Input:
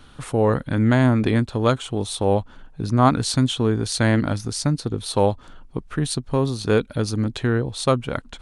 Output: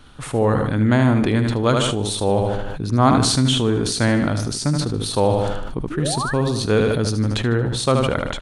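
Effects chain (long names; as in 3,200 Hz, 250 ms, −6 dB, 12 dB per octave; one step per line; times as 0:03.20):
sound drawn into the spectrogram rise, 0:05.90–0:06.34, 280–1,900 Hz −30 dBFS
on a send: repeating echo 76 ms, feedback 42%, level −9 dB
on the sum: level that may fall only so fast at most 28 dB per second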